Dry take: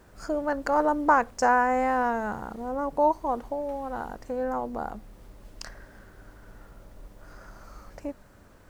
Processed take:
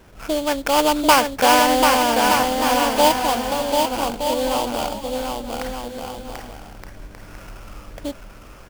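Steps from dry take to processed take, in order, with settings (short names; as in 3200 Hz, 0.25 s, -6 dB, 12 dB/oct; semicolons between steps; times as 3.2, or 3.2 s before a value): sample-rate reducer 3900 Hz, jitter 20%; bouncing-ball echo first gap 0.74 s, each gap 0.65×, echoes 5; gain +6 dB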